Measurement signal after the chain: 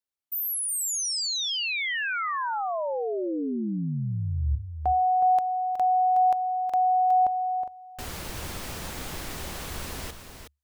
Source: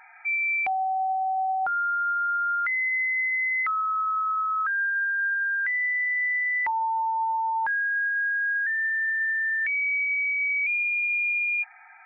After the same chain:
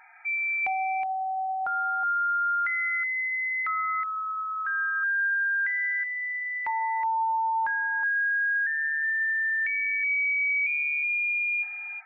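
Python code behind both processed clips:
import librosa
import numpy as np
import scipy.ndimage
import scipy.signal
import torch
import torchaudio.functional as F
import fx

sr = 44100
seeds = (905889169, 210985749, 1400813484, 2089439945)

y = fx.peak_eq(x, sr, hz=72.0, db=7.0, octaves=0.24)
y = y + 10.0 ** (-8.5 / 20.0) * np.pad(y, (int(368 * sr / 1000.0), 0))[:len(y)]
y = F.gain(torch.from_numpy(y), -2.5).numpy()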